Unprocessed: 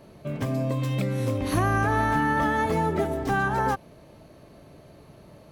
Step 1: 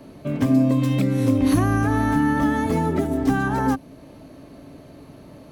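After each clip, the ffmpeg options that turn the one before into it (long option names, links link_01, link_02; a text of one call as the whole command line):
ffmpeg -i in.wav -filter_complex "[0:a]equalizer=frequency=270:width=5.7:gain=13,acrossover=split=300|5000[link_01][link_02][link_03];[link_02]alimiter=limit=-21dB:level=0:latency=1:release=354[link_04];[link_01][link_04][link_03]amix=inputs=3:normalize=0,volume=4dB" out.wav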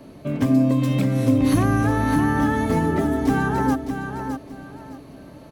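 ffmpeg -i in.wav -af "aecho=1:1:612|1224|1836:0.422|0.105|0.0264" out.wav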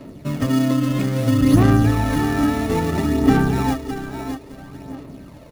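ffmpeg -i in.wav -filter_complex "[0:a]asplit=2[link_01][link_02];[link_02]acrusher=samples=28:mix=1:aa=0.000001,volume=-4dB[link_03];[link_01][link_03]amix=inputs=2:normalize=0,aphaser=in_gain=1:out_gain=1:delay=3.1:decay=0.42:speed=0.6:type=sinusoidal,volume=-3dB" out.wav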